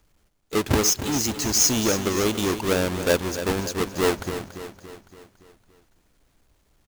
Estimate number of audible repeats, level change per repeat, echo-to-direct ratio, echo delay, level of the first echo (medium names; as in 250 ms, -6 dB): 5, -5.5 dB, -9.5 dB, 283 ms, -11.0 dB